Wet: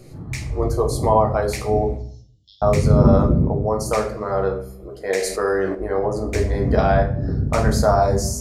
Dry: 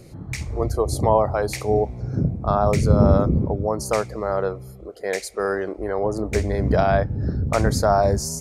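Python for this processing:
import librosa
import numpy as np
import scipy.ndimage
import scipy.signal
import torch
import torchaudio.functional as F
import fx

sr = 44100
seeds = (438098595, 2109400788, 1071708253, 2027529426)

y = fx.brickwall_bandpass(x, sr, low_hz=2800.0, high_hz=7700.0, at=(1.97, 2.62))
y = fx.room_shoebox(y, sr, seeds[0], volume_m3=55.0, walls='mixed', distance_m=0.54)
y = fx.env_flatten(y, sr, amount_pct=50, at=(5.1, 5.75))
y = F.gain(torch.from_numpy(y), -1.0).numpy()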